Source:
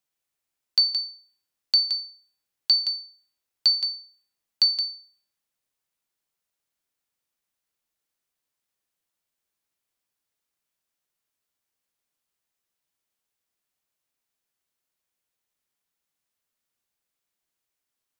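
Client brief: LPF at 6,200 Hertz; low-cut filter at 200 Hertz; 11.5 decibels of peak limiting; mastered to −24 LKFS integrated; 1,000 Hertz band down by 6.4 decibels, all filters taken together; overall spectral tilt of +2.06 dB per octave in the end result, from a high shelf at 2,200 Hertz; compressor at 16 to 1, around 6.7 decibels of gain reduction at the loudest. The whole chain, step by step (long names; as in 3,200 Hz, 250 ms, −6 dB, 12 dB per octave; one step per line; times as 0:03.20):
high-pass filter 200 Hz
low-pass filter 6,200 Hz
parametric band 1,000 Hz −7 dB
high-shelf EQ 2,200 Hz −6 dB
downward compressor 16 to 1, threshold −27 dBFS
level +11 dB
brickwall limiter −16.5 dBFS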